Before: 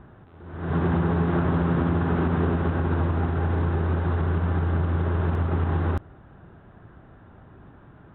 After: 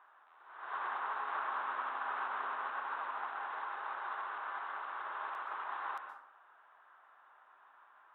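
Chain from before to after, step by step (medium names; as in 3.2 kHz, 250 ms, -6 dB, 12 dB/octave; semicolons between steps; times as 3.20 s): ladder high-pass 870 Hz, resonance 45%; plate-style reverb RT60 0.65 s, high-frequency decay 0.55×, pre-delay 110 ms, DRR 6.5 dB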